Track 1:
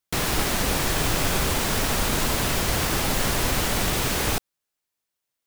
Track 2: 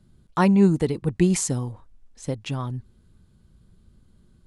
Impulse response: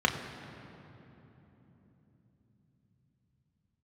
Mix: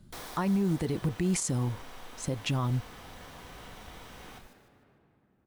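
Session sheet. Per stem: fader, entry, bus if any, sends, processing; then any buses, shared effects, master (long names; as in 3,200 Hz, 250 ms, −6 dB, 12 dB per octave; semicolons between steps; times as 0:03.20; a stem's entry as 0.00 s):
−14.5 dB, 0.00 s, send −20 dB, echo send −22 dB, parametric band 110 Hz −14.5 dB 2 octaves; automatic ducking −14 dB, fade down 1.10 s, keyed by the second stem
+2.5 dB, 0.00 s, no send, no echo send, floating-point word with a short mantissa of 4 bits; notch filter 460 Hz; downward compressor, threshold −23 dBFS, peak gain reduction 11 dB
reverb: on, RT60 3.6 s, pre-delay 4 ms
echo: repeating echo 151 ms, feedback 36%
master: brickwall limiter −20.5 dBFS, peak gain reduction 9.5 dB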